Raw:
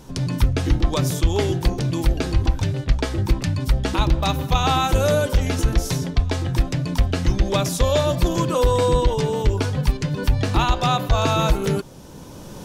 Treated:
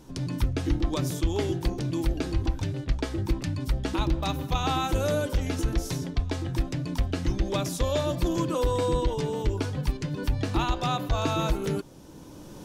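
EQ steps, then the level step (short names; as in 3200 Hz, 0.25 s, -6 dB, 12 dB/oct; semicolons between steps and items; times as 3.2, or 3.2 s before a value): bell 310 Hz +8 dB 0.32 oct; -8.0 dB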